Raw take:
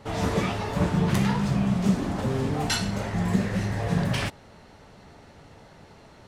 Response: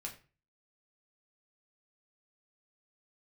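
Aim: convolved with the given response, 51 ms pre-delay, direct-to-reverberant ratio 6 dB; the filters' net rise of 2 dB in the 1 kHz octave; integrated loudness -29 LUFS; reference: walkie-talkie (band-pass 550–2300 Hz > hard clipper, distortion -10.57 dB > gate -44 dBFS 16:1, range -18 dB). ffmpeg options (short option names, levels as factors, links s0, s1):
-filter_complex "[0:a]equalizer=f=1000:t=o:g=3.5,asplit=2[s0][s1];[1:a]atrim=start_sample=2205,adelay=51[s2];[s1][s2]afir=irnorm=-1:irlink=0,volume=0.631[s3];[s0][s3]amix=inputs=2:normalize=0,highpass=550,lowpass=2300,asoftclip=type=hard:threshold=0.0316,agate=range=0.126:threshold=0.00631:ratio=16,volume=1.78"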